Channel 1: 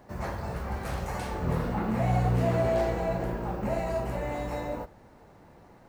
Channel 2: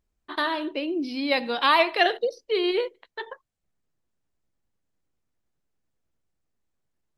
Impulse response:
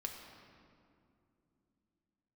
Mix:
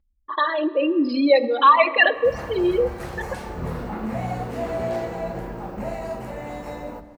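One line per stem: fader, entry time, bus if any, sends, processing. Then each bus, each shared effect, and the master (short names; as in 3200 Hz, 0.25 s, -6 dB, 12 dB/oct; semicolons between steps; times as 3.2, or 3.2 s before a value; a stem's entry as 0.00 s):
-2.5 dB, 2.15 s, send -6 dB, notches 60/120/180 Hz
+2.5 dB, 0.00 s, send -8.5 dB, formant sharpening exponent 3; LPF 4400 Hz; comb 3.6 ms, depth 79%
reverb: on, RT60 2.7 s, pre-delay 4 ms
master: dry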